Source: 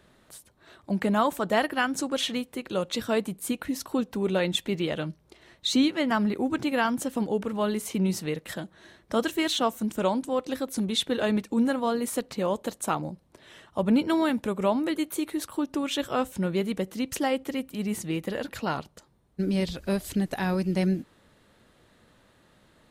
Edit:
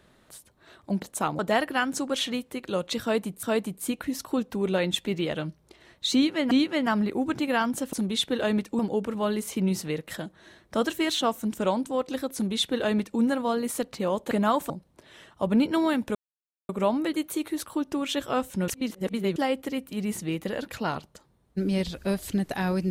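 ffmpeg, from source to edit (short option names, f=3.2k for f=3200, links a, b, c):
-filter_complex "[0:a]asplit=12[a][b][c][d][e][f][g][h][i][j][k][l];[a]atrim=end=1.022[m];[b]atrim=start=12.688:end=13.062[n];[c]atrim=start=1.408:end=3.452[o];[d]atrim=start=3.038:end=6.122[p];[e]atrim=start=5.748:end=7.172[q];[f]atrim=start=10.718:end=11.582[r];[g]atrim=start=7.168:end=12.692[s];[h]atrim=start=1.018:end=1.412[t];[i]atrim=start=13.058:end=14.51,asetpts=PTS-STARTPTS,afade=t=out:st=1.448:d=0.004:c=hsin,apad=pad_dur=0.54[u];[j]atrim=start=14.51:end=16.502,asetpts=PTS-STARTPTS,afade=t=in:d=0.004:c=hsin[v];[k]atrim=start=16.498:end=17.182,asetpts=PTS-STARTPTS,areverse[w];[l]atrim=start=17.178[x];[m][n]acrossfade=d=0.004:c1=hsin:c2=hsin[y];[y][o]acrossfade=d=0.004:c1=hsin:c2=hsin[z];[z][p]acrossfade=d=0.004:c1=hsin:c2=hsin[aa];[aa][q]acrossfade=d=0.004:c1=hsin:c2=hsin[ab];[ab][r]acrossfade=d=0.004:c1=hsin:c2=hsin[ac];[ac][s]acrossfade=d=0.004:c1=hsin:c2=hsin[ad];[ad][t]acrossfade=d=0.004:c1=hsin:c2=hsin[ae];[u][v]concat=n=2:v=0:a=1[af];[ae][af]acrossfade=d=0.004:c1=hsin:c2=hsin[ag];[ag][w]acrossfade=d=0.004:c1=hsin:c2=hsin[ah];[ah][x]acrossfade=d=0.004:c1=hsin:c2=hsin"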